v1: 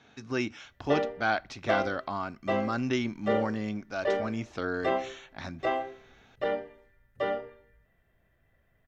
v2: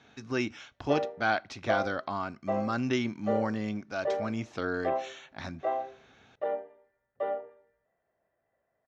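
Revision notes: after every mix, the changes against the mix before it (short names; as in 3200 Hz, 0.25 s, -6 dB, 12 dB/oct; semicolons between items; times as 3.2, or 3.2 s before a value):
background: add band-pass 690 Hz, Q 1.5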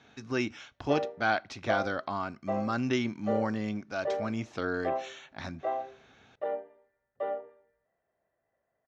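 background: send -10.5 dB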